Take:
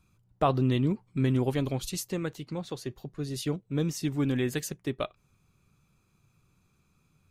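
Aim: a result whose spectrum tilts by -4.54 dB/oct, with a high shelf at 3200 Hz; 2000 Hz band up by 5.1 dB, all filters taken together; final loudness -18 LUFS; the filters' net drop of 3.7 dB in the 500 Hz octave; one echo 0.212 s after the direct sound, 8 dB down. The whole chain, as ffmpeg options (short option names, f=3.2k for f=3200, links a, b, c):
-af "equalizer=f=500:t=o:g=-5.5,equalizer=f=2k:t=o:g=3.5,highshelf=f=3.2k:g=8.5,aecho=1:1:212:0.398,volume=11.5dB"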